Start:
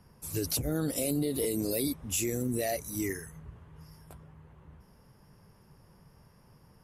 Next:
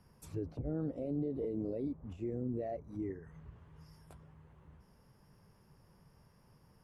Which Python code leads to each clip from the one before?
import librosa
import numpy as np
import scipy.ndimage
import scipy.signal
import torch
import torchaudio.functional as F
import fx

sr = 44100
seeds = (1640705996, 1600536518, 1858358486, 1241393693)

y = fx.env_lowpass_down(x, sr, base_hz=750.0, full_db=-32.0)
y = y * librosa.db_to_amplitude(-5.5)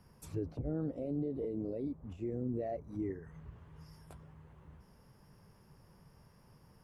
y = fx.rider(x, sr, range_db=4, speed_s=2.0)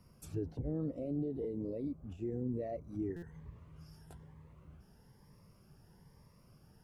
y = fx.buffer_glitch(x, sr, at_s=(3.16,), block=256, repeats=10)
y = fx.notch_cascade(y, sr, direction='rising', hz=1.1)